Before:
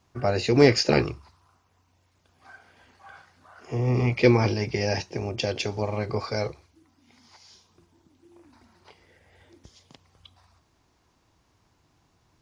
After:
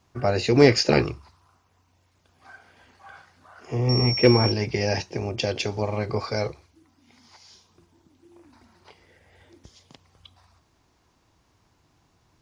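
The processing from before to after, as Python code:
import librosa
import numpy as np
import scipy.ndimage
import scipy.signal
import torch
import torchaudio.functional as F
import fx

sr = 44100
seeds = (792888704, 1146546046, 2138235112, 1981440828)

y = fx.pwm(x, sr, carrier_hz=5500.0, at=(3.89, 4.52))
y = y * librosa.db_to_amplitude(1.5)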